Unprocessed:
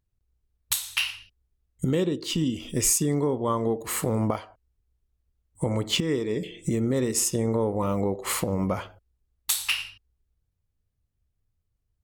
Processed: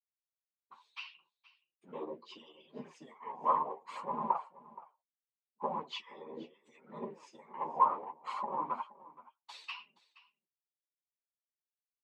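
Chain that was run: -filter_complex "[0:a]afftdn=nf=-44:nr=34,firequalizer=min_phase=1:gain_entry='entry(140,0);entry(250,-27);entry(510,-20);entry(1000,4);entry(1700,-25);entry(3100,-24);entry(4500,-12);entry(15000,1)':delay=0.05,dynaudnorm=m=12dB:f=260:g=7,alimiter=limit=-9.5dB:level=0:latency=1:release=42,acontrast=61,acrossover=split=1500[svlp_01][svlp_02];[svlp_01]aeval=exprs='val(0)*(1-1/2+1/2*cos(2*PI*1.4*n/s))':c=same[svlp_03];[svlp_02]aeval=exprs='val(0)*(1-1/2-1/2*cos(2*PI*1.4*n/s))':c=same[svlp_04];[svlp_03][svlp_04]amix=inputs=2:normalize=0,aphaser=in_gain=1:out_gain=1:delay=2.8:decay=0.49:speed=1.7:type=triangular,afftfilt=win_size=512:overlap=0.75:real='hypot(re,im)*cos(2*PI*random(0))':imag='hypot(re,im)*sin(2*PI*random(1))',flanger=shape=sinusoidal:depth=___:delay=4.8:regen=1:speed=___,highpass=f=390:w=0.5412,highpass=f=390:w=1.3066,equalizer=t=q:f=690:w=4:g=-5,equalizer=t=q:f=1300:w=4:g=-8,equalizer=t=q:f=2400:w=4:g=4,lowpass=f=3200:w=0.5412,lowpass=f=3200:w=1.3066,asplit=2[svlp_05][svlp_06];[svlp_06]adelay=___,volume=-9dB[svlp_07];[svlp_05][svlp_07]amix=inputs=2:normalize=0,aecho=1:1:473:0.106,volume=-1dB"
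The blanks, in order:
8, 0.71, 13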